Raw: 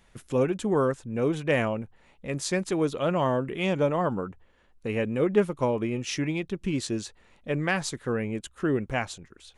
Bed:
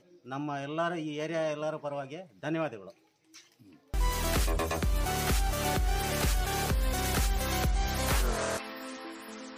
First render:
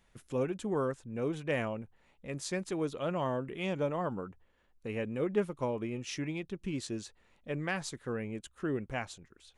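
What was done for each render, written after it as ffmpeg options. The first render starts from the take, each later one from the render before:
-af "volume=-8dB"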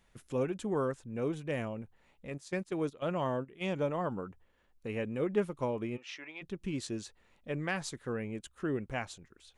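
-filter_complex "[0:a]asettb=1/sr,asplit=3[a][b][c];[a]atrim=end=1.344[d];[b]atrim=start=1.34:end=1.77,asetpts=PTS-STARTPTS,afade=t=in:d=0.004:c=qsin,afade=t=out:st=0.426:d=0.004:c=qsin,equalizer=f=1.5k:w=0.34:g=-5.5[e];[c]atrim=start=1.766[f];[d][e]acrossfade=d=0.004:c1=hsin:c2=qsin[g];[g][f]acrossfade=d=0.004:c1=qsin:c2=hsin,asplit=3[h][i][j];[h]afade=t=out:st=2.29:d=0.02[k];[i]agate=range=-13dB:threshold=-38dB:ratio=16:release=100:detection=peak,afade=t=in:st=2.29:d=0.02,afade=t=out:st=3.63:d=0.02[l];[j]afade=t=in:st=3.63:d=0.02[m];[k][l][m]amix=inputs=3:normalize=0,asplit=3[n][o][p];[n]afade=t=out:st=5.96:d=0.02[q];[o]highpass=760,lowpass=3.4k,afade=t=in:st=5.96:d=0.02,afade=t=out:st=6.41:d=0.02[r];[p]afade=t=in:st=6.41:d=0.02[s];[q][r][s]amix=inputs=3:normalize=0"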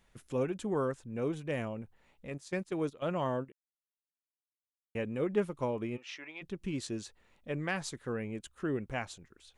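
-filter_complex "[0:a]asplit=3[a][b][c];[a]atrim=end=3.52,asetpts=PTS-STARTPTS,afade=t=out:st=3.516:d=0.004:c=hsin[d];[b]atrim=start=3.52:end=4.95,asetpts=PTS-STARTPTS,volume=0[e];[c]atrim=start=4.95,asetpts=PTS-STARTPTS,afade=t=in:d=0.004:c=hsin[f];[d][e][f]concat=n=3:v=0:a=1"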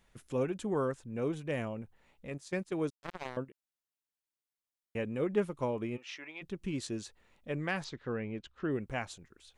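-filter_complex "[0:a]asettb=1/sr,asplit=3[a][b][c];[a]atrim=end=2.904[d];[b]atrim=start=2.9:end=3.37,asetpts=PTS-STARTPTS,afade=t=in:d=0.004:c=qsin,afade=t=out:st=0.466:d=0.004:c=qsin,acrusher=bits=3:mix=0:aa=0.5[e];[c]atrim=start=3.366[f];[d][e]acrossfade=d=0.004:c1=hsin:c2=qsin[g];[g][f]acrossfade=d=0.004:c1=qsin:c2=hsin,asettb=1/sr,asplit=3[h][i][j];[h]atrim=end=7.844[k];[i]atrim=start=7.84:end=8.71,asetpts=PTS-STARTPTS,afade=t=in:d=0.004:c=qsin,afade=t=out:st=0.866:d=0.004:c=qsin,lowpass=f=4.9k:w=0.5412,lowpass=f=4.9k:w=1.3066[l];[j]atrim=start=8.706[m];[k][l]acrossfade=d=0.004:c1=hsin:c2=qsin[n];[n][m]acrossfade=d=0.004:c1=qsin:c2=hsin"

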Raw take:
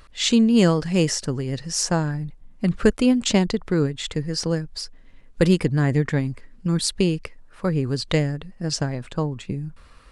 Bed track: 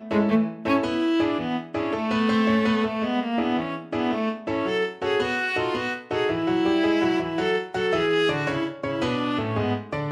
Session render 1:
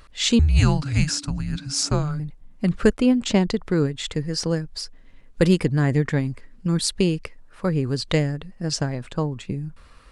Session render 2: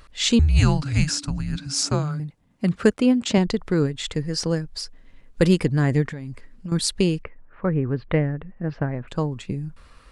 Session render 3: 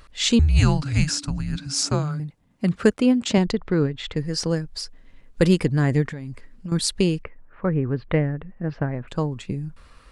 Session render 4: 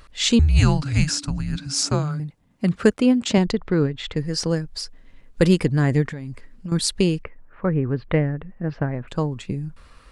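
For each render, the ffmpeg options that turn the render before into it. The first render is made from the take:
-filter_complex "[0:a]asettb=1/sr,asplit=3[a][b][c];[a]atrim=end=0.394[d];[b]atrim=start=0.39:end=2.2,asetpts=PTS-STARTPTS,afade=t=in:d=0.004:c=qsin,afade=t=out:st=1.806:d=0.004:c=qsin,afreqshift=-300[e];[c]atrim=start=2.196[f];[d][e]acrossfade=d=0.004:c1=hsin:c2=qsin[g];[g][f]acrossfade=d=0.004:c1=qsin:c2=hsin,asettb=1/sr,asplit=3[h][i][j];[h]atrim=end=2.944[k];[i]atrim=start=2.94:end=3.49,asetpts=PTS-STARTPTS,afade=t=in:d=0.004:c=qsin,afade=t=out:st=0.546:d=0.004:c=qsin,highshelf=f=3.7k:g=-7.5[l];[j]atrim=start=3.486[m];[k][l]acrossfade=d=0.004:c1=hsin:c2=qsin[n];[n][m]acrossfade=d=0.004:c1=qsin:c2=hsin"
-filter_complex "[0:a]asettb=1/sr,asplit=3[a][b][c];[a]atrim=end=1.674[d];[b]atrim=start=1.67:end=3.38,asetpts=PTS-STARTPTS,afade=t=in:d=0.004:c=qsin,afade=t=out:st=1.706:d=0.004:c=qsin,highpass=88[e];[c]atrim=start=3.376[f];[d][e]acrossfade=d=0.004:c1=hsin:c2=qsin[g];[g][f]acrossfade=d=0.004:c1=qsin:c2=hsin,asettb=1/sr,asplit=3[h][i][j];[h]atrim=end=6.054[k];[i]atrim=start=6.05:end=6.72,asetpts=PTS-STARTPTS,afade=t=in:d=0.004:c=qsin,afade=t=out:st=0.666:d=0.004:c=qsin,acompressor=threshold=-28dB:ratio=16:attack=3.2:release=140:knee=1:detection=peak[l];[j]atrim=start=6.716[m];[k][l]acrossfade=d=0.004:c1=hsin:c2=qsin[n];[n][m]acrossfade=d=0.004:c1=qsin:c2=hsin,asettb=1/sr,asplit=3[o][p][q];[o]atrim=end=7.224[r];[p]atrim=start=7.22:end=9.08,asetpts=PTS-STARTPTS,afade=t=in:d=0.004:c=qsin,afade=t=out:st=1.856:d=0.004:c=qsin,lowpass=f=2.2k:w=0.5412,lowpass=f=2.2k:w=1.3066[s];[q]atrim=start=9.076[t];[r][s]acrossfade=d=0.004:c1=hsin:c2=qsin[u];[u][t]acrossfade=d=0.004:c1=qsin:c2=hsin"
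-filter_complex "[0:a]asettb=1/sr,asplit=3[a][b][c];[a]atrim=end=3.524[d];[b]atrim=start=3.52:end=4.17,asetpts=PTS-STARTPTS,afade=t=in:d=0.004:c=qsin,afade=t=out:st=0.646:d=0.004:c=qsin,lowpass=3.6k[e];[c]atrim=start=4.166[f];[d][e]acrossfade=d=0.004:c1=hsin:c2=qsin[g];[g][f]acrossfade=d=0.004:c1=qsin:c2=hsin"
-af "volume=1dB"

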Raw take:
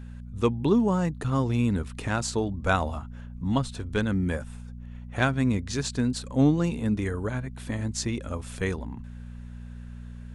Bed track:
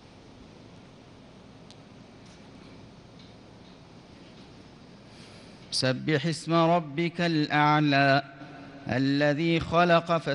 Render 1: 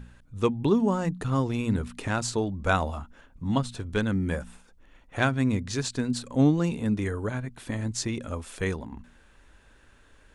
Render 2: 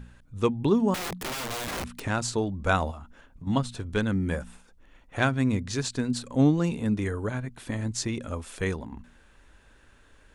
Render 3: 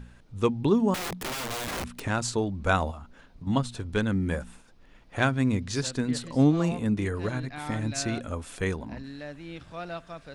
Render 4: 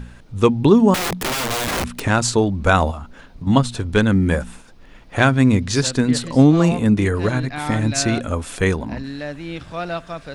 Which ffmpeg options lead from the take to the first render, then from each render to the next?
-af "bandreject=f=60:t=h:w=4,bandreject=f=120:t=h:w=4,bandreject=f=180:t=h:w=4,bandreject=f=240:t=h:w=4"
-filter_complex "[0:a]asettb=1/sr,asplit=3[a][b][c];[a]atrim=end=0.944[d];[b]atrim=start=0.94:end=2.05,asetpts=PTS-STARTPTS,afade=t=in:d=0.004:c=qsin,afade=t=out:st=1.106:d=0.004:c=qsin,aeval=exprs='(mod(25.1*val(0)+1,2)-1)/25.1':c=same[e];[c]atrim=start=2.046[f];[d][e]acrossfade=d=0.004:c1=hsin:c2=qsin[g];[g][f]acrossfade=d=0.004:c1=qsin:c2=hsin,asettb=1/sr,asplit=3[h][i][j];[h]atrim=end=2.914[k];[i]atrim=start=2.91:end=3.47,asetpts=PTS-STARTPTS,afade=t=in:d=0.004:c=qsin,afade=t=out:st=0.556:d=0.004:c=qsin,acompressor=threshold=-37dB:ratio=10:attack=3.2:release=140:knee=1:detection=peak[l];[j]atrim=start=3.466[m];[k][l]acrossfade=d=0.004:c1=hsin:c2=qsin[n];[n][m]acrossfade=d=0.004:c1=qsin:c2=hsin"
-filter_complex "[1:a]volume=-16dB[a];[0:a][a]amix=inputs=2:normalize=0"
-af "volume=10.5dB,alimiter=limit=-2dB:level=0:latency=1"

